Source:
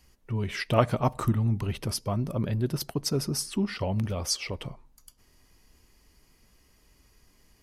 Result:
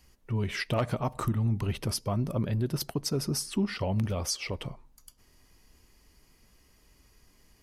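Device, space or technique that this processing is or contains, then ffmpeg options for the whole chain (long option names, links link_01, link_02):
clipper into limiter: -af "asoftclip=type=hard:threshold=-13dB,alimiter=limit=-19.5dB:level=0:latency=1:release=139"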